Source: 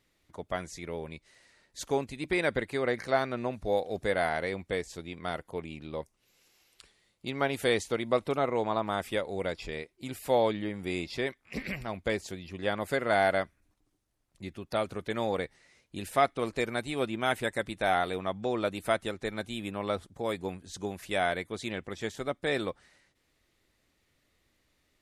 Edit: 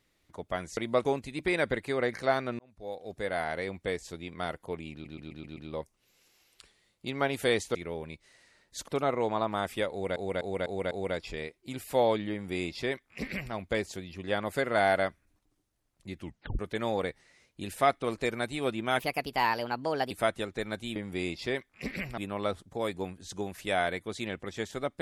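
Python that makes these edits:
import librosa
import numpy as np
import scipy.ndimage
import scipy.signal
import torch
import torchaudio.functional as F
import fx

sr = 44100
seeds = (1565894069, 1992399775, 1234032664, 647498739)

y = fx.edit(x, sr, fx.swap(start_s=0.77, length_s=1.13, other_s=7.95, other_length_s=0.28),
    fx.fade_in_span(start_s=3.44, length_s=1.69, curve='qsin'),
    fx.stutter(start_s=5.77, slice_s=0.13, count=6),
    fx.repeat(start_s=9.26, length_s=0.25, count=5),
    fx.duplicate(start_s=10.67, length_s=1.22, to_s=19.62),
    fx.tape_stop(start_s=14.55, length_s=0.39),
    fx.speed_span(start_s=17.34, length_s=1.43, speed=1.28), tone=tone)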